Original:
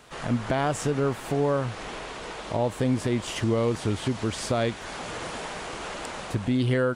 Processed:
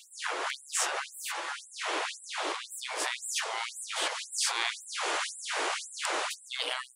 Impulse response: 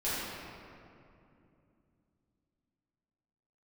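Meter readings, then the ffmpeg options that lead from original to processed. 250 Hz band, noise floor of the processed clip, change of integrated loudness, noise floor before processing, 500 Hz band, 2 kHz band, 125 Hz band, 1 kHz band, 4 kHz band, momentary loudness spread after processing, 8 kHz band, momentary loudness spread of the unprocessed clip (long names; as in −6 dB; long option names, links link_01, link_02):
−23.5 dB, −53 dBFS, −4.5 dB, −39 dBFS, −13.5 dB, +2.0 dB, below −40 dB, −2.0 dB, +4.5 dB, 6 LU, +6.0 dB, 10 LU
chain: -af "afftfilt=real='re*lt(hypot(re,im),0.0708)':imag='im*lt(hypot(re,im),0.0708)':win_size=1024:overlap=0.75,afftfilt=real='re*gte(b*sr/1024,260*pow(7500/260,0.5+0.5*sin(2*PI*1.9*pts/sr)))':imag='im*gte(b*sr/1024,260*pow(7500/260,0.5+0.5*sin(2*PI*1.9*pts/sr)))':win_size=1024:overlap=0.75,volume=6.5dB"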